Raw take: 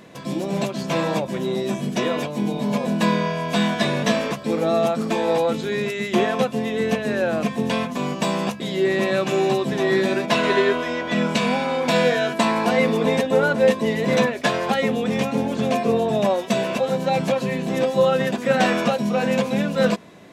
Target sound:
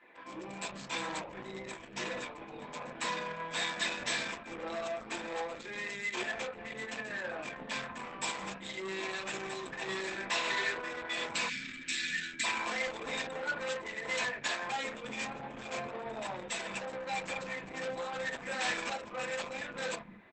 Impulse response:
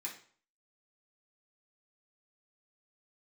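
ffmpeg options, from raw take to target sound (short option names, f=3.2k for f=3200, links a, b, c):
-filter_complex "[0:a]asplit=3[a][b][c];[a]afade=t=out:st=13.75:d=0.02[d];[b]asubboost=boost=7:cutoff=63,afade=t=in:st=13.75:d=0.02,afade=t=out:st=14.42:d=0.02[e];[c]afade=t=in:st=14.42:d=0.02[f];[d][e][f]amix=inputs=3:normalize=0[g];[1:a]atrim=start_sample=2205,atrim=end_sample=3969[h];[g][h]afir=irnorm=-1:irlink=0,acrossover=split=2800[i][j];[i]asoftclip=type=tanh:threshold=-23dB[k];[j]acrusher=bits=5:mix=0:aa=0.5[l];[k][l]amix=inputs=2:normalize=0,asplit=3[m][n][o];[m]afade=t=out:st=11.48:d=0.02[p];[n]asuperstop=centerf=720:order=8:qfactor=0.56,afade=t=in:st=11.48:d=0.02,afade=t=out:st=12.43:d=0.02[q];[o]afade=t=in:st=12.43:d=0.02[r];[p][q][r]amix=inputs=3:normalize=0,tiltshelf=f=650:g=-6.5,asettb=1/sr,asplit=3[s][t][u];[s]atrim=end=10.124[v];[t]atrim=start=10.12:end=10.92,asetpts=PTS-STARTPTS,afade=t=in:d=0.004:c=qsin,afade=t=out:st=0.796:d=0.004:c=qsin,bandreject=f=60:t=h:w=6,bandreject=f=120:t=h:w=6,bandreject=f=180:t=h:w=6,bandreject=f=240:t=h:w=6,bandreject=f=300:t=h:w=6,bandreject=f=360:t=h:w=6,bandreject=f=420:t=h:w=6[w];[u]atrim=start=10.916[x];[v][w]acrossfade=d=0.004:c1=hsin:c2=qsin[y];[y][x]acrossfade=d=0.004:c1=qsin:c2=hsin,acrossover=split=220[z][aa];[z]adelay=170[ab];[ab][aa]amix=inputs=2:normalize=0,volume=-9dB" -ar 48000 -c:a libopus -b:a 12k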